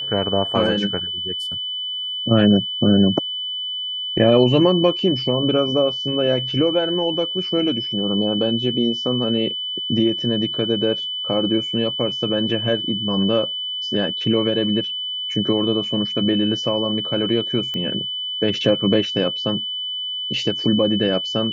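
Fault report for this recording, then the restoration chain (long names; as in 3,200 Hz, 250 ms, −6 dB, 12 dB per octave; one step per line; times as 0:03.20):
whistle 3,000 Hz −24 dBFS
0:17.74: click −15 dBFS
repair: click removal
notch filter 3,000 Hz, Q 30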